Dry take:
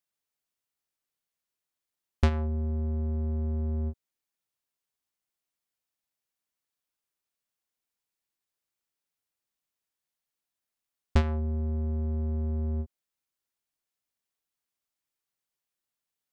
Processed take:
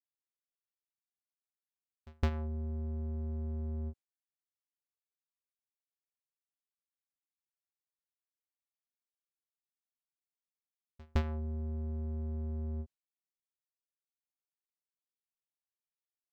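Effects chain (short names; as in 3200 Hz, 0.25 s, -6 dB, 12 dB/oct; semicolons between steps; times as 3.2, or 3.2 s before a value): pre-echo 0.164 s -22.5 dB; expander -42 dBFS; decimation joined by straight lines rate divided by 2×; gain -7.5 dB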